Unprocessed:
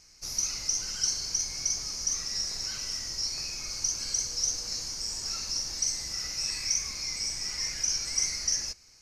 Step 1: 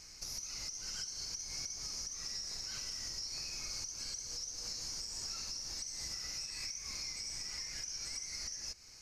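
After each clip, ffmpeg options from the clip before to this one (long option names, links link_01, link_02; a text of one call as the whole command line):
ffmpeg -i in.wav -af "acompressor=threshold=-36dB:ratio=6,alimiter=level_in=11.5dB:limit=-24dB:level=0:latency=1:release=395,volume=-11.5dB,volume=3.5dB" out.wav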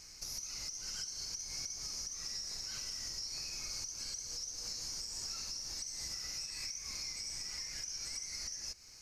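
ffmpeg -i in.wav -af "highshelf=frequency=9600:gain=5.5,volume=-1dB" out.wav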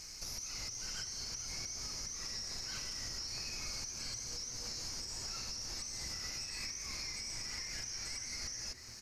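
ffmpeg -i in.wav -filter_complex "[0:a]acrossover=split=3500[link_01][link_02];[link_01]asplit=7[link_03][link_04][link_05][link_06][link_07][link_08][link_09];[link_04]adelay=449,afreqshift=-130,volume=-11dB[link_10];[link_05]adelay=898,afreqshift=-260,volume=-16.7dB[link_11];[link_06]adelay=1347,afreqshift=-390,volume=-22.4dB[link_12];[link_07]adelay=1796,afreqshift=-520,volume=-28dB[link_13];[link_08]adelay=2245,afreqshift=-650,volume=-33.7dB[link_14];[link_09]adelay=2694,afreqshift=-780,volume=-39.4dB[link_15];[link_03][link_10][link_11][link_12][link_13][link_14][link_15]amix=inputs=7:normalize=0[link_16];[link_02]alimiter=level_in=17.5dB:limit=-24dB:level=0:latency=1,volume=-17.5dB[link_17];[link_16][link_17]amix=inputs=2:normalize=0,volume=4.5dB" out.wav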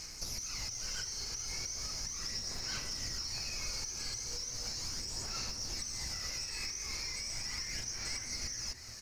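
ffmpeg -i in.wav -filter_complex "[0:a]aphaser=in_gain=1:out_gain=1:delay=2.4:decay=0.3:speed=0.37:type=sinusoidal,asplit=2[link_01][link_02];[link_02]acrusher=bits=3:mode=log:mix=0:aa=0.000001,volume=-11.5dB[link_03];[link_01][link_03]amix=inputs=2:normalize=0" out.wav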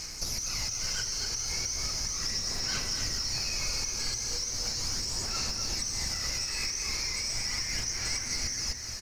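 ffmpeg -i in.wav -af "aecho=1:1:250:0.422,volume=6.5dB" out.wav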